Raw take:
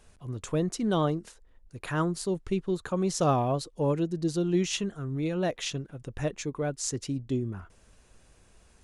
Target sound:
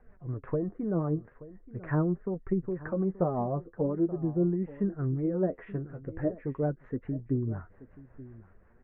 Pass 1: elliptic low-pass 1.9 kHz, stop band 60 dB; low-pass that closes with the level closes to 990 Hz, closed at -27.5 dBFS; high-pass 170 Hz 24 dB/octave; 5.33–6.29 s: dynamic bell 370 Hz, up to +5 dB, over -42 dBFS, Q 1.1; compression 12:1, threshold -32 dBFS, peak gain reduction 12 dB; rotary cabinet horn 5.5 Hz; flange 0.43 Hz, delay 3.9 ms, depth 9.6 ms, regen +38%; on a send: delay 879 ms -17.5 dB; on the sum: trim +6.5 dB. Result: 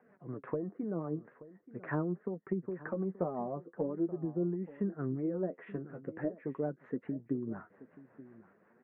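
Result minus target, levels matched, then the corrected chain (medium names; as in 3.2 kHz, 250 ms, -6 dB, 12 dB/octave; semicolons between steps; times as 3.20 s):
compression: peak gain reduction +7 dB; 125 Hz band -3.5 dB
elliptic low-pass 1.9 kHz, stop band 60 dB; low-pass that closes with the level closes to 990 Hz, closed at -27.5 dBFS; 5.33–6.29 s: dynamic bell 370 Hz, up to +5 dB, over -42 dBFS, Q 1.1; compression 12:1, threshold -25 dBFS, peak gain reduction 5 dB; rotary cabinet horn 5.5 Hz; flange 0.43 Hz, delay 3.9 ms, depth 9.6 ms, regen +38%; on a send: delay 879 ms -17.5 dB; on the sum: trim +6.5 dB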